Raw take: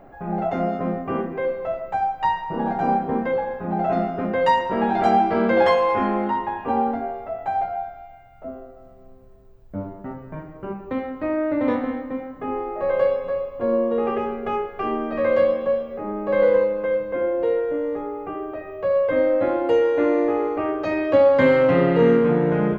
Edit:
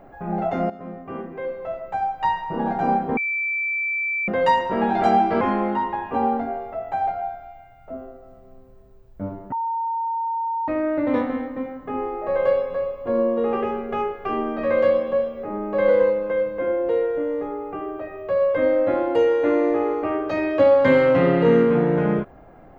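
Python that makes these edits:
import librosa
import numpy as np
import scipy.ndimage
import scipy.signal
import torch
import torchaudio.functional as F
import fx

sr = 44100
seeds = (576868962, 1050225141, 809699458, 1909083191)

y = fx.edit(x, sr, fx.fade_in_from(start_s=0.7, length_s=1.69, floor_db=-13.5),
    fx.bleep(start_s=3.17, length_s=1.11, hz=2330.0, db=-21.5),
    fx.cut(start_s=5.41, length_s=0.54),
    fx.bleep(start_s=10.06, length_s=1.16, hz=915.0, db=-22.0), tone=tone)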